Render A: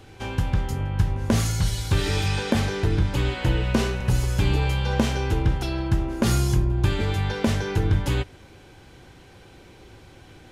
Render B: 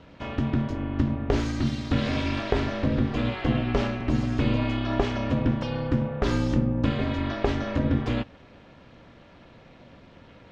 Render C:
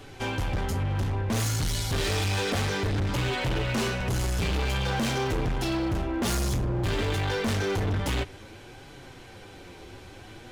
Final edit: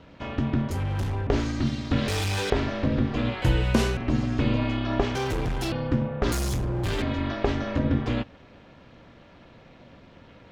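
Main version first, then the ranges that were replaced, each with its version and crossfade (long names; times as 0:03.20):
B
0:00.71–0:01.27: punch in from C
0:02.08–0:02.50: punch in from C
0:03.42–0:03.97: punch in from A
0:05.15–0:05.72: punch in from C
0:06.32–0:07.02: punch in from C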